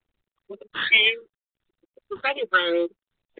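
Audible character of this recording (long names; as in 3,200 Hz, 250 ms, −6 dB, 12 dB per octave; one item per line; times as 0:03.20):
a buzz of ramps at a fixed pitch in blocks of 8 samples
phaser sweep stages 12, 2.2 Hz, lowest notch 690–1,500 Hz
G.726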